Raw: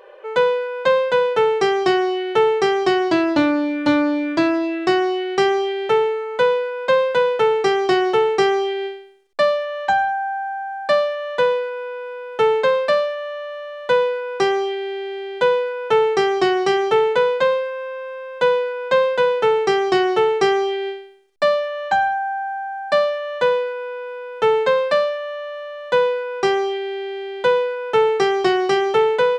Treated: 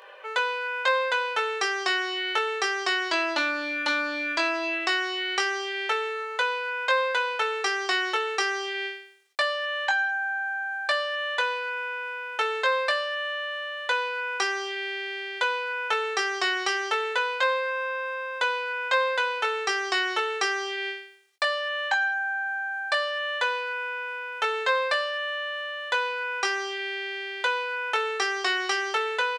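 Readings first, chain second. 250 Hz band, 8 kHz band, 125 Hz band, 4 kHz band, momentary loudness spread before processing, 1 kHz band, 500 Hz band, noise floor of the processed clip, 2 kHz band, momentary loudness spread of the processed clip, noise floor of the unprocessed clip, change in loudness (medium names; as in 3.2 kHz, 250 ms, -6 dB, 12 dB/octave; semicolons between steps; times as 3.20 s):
-17.5 dB, no reading, under -30 dB, 0.0 dB, 11 LU, -7.0 dB, -14.5 dB, -36 dBFS, +1.0 dB, 6 LU, -33 dBFS, -7.5 dB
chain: Bessel high-pass 1.4 kHz, order 2; compression 2:1, threshold -32 dBFS, peak gain reduction 7 dB; doubling 21 ms -5.5 dB; trim +5 dB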